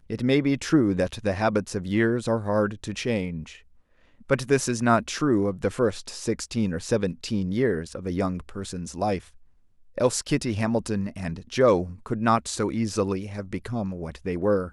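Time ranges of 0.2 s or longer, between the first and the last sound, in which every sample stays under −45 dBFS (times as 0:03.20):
0:03.60–0:04.21
0:09.43–0:09.96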